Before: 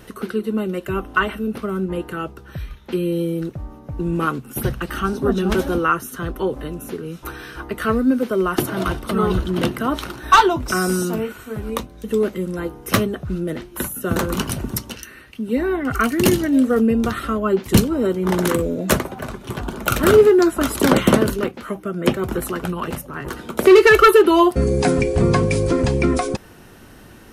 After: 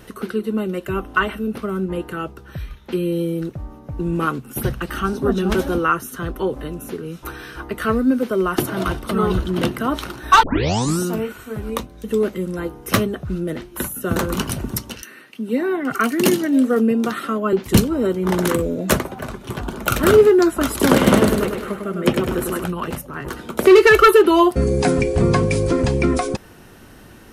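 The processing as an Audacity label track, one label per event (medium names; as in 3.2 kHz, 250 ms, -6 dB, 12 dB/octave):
10.430000	10.430000	tape start 0.57 s
15.020000	17.530000	high-pass 170 Hz 24 dB/octave
20.700000	22.640000	feedback delay 101 ms, feedback 50%, level -5 dB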